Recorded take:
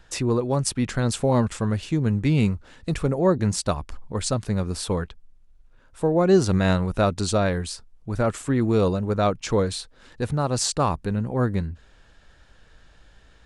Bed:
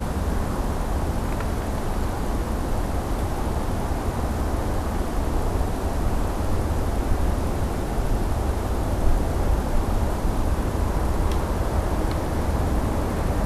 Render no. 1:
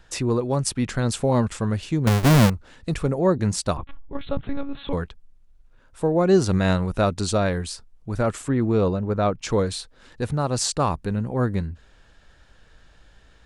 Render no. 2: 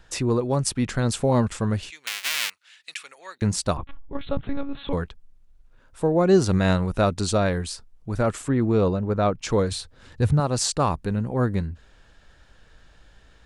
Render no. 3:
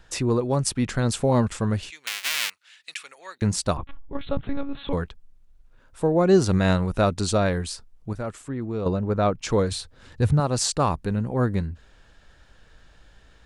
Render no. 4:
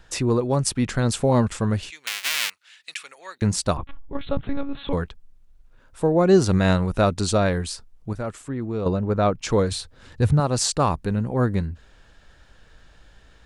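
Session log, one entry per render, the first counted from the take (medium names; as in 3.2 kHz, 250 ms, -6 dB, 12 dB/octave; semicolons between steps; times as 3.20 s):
2.07–2.50 s: square wave that keeps the level; 3.77–4.93 s: monotone LPC vocoder at 8 kHz 280 Hz; 8.48–9.39 s: low-pass 2.4 kHz 6 dB/octave
1.90–3.42 s: resonant high-pass 2.4 kHz, resonance Q 1.5; 9.71–10.40 s: peaking EQ 90 Hz +13 dB 1.3 oct
8.13–8.86 s: gain -8.5 dB
trim +1.5 dB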